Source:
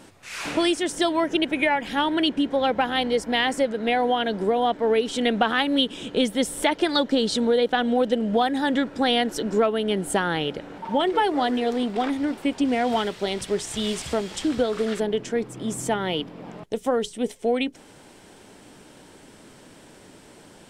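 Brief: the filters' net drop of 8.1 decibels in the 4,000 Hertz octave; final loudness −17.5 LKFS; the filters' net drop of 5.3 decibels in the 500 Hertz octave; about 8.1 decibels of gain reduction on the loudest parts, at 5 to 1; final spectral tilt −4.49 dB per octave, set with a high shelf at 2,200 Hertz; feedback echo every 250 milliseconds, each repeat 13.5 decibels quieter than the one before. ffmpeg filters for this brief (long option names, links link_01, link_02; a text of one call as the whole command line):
ffmpeg -i in.wav -af "equalizer=frequency=500:width_type=o:gain=-6,highshelf=frequency=2200:gain=-3,equalizer=frequency=4000:width_type=o:gain=-8.5,acompressor=threshold=-29dB:ratio=5,aecho=1:1:250|500:0.211|0.0444,volume=15.5dB" out.wav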